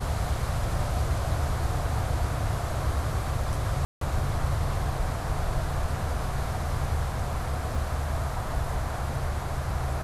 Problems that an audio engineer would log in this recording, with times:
3.85–4.01 gap 0.163 s
7.75 gap 2.7 ms

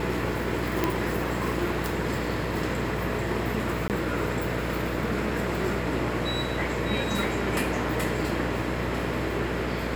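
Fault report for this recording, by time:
buzz 60 Hz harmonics 11 -32 dBFS
0.84 pop -9 dBFS
3.88–3.9 gap 18 ms

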